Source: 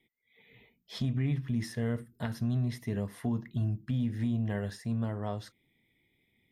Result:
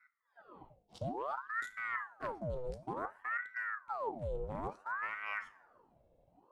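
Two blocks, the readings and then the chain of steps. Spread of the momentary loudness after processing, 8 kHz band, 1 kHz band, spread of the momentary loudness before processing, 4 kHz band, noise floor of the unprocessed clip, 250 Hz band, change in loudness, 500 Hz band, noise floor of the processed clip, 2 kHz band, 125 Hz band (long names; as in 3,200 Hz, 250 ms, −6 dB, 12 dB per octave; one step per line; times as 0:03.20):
14 LU, below −10 dB, +8.0 dB, 6 LU, −12.5 dB, −75 dBFS, −17.5 dB, −6.5 dB, −1.0 dB, −75 dBFS, +9.0 dB, −18.5 dB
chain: adaptive Wiener filter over 41 samples
octave-band graphic EQ 125/250/500/1,000/2,000/8,000 Hz −8/+8/+7/+8/−5/+10 dB
reversed playback
downward compressor 8 to 1, threshold −41 dBFS, peak gain reduction 19 dB
reversed playback
coupled-rooms reverb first 0.41 s, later 1.8 s, from −17 dB, DRR 9.5 dB
ring modulator whose carrier an LFO sweeps 1,000 Hz, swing 75%, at 0.57 Hz
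level +6 dB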